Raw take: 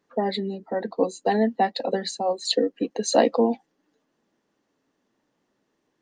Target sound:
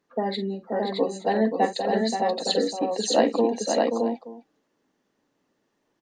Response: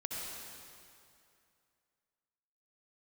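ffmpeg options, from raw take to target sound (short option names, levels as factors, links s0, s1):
-af "aecho=1:1:41|46|529|619|875:0.112|0.237|0.473|0.708|0.119,volume=0.794"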